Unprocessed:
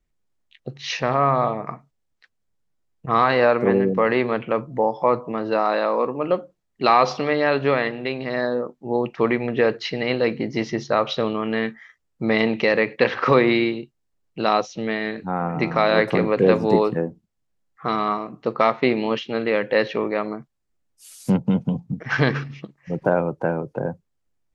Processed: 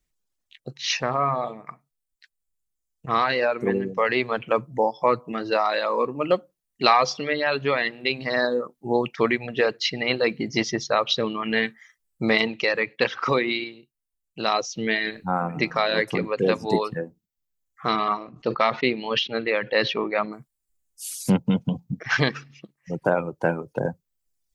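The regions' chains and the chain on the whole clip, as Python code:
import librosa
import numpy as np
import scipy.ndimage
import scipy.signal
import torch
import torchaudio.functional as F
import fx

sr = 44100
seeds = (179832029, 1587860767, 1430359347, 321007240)

y = fx.chain(x, sr, fx.lowpass(hz=5100.0, slope=24),
    fx.sustainer(db_per_s=110.0), at=(17.93, 20.33))
y = fx.dereverb_blind(y, sr, rt60_s=1.5)
y = fx.high_shelf(y, sr, hz=2600.0, db=12.0)
y = fx.rider(y, sr, range_db=4, speed_s=0.5)
y = y * 10.0 ** (-2.5 / 20.0)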